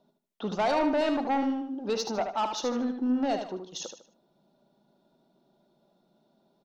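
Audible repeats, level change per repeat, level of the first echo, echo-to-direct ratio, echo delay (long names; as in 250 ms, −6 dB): 3, −9.5 dB, −7.0 dB, −6.5 dB, 76 ms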